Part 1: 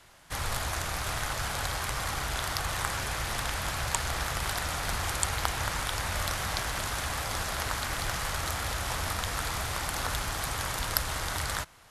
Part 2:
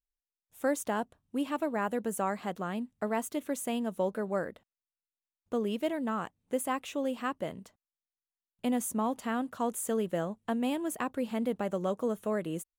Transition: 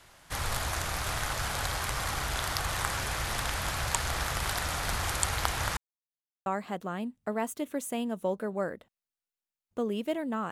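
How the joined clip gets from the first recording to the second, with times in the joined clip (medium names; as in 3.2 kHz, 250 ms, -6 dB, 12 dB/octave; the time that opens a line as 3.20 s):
part 1
5.77–6.46 s: mute
6.46 s: go over to part 2 from 2.21 s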